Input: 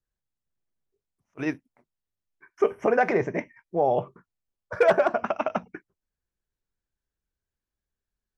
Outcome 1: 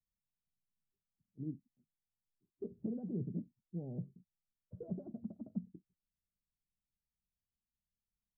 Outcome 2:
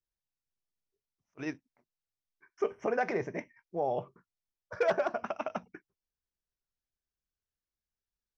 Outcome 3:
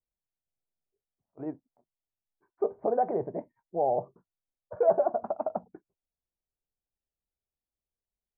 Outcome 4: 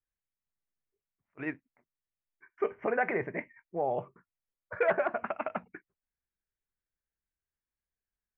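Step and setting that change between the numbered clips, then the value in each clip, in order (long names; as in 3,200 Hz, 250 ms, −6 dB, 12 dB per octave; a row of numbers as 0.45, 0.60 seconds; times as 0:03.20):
transistor ladder low-pass, frequency: 240, 6,700, 880, 2,500 Hertz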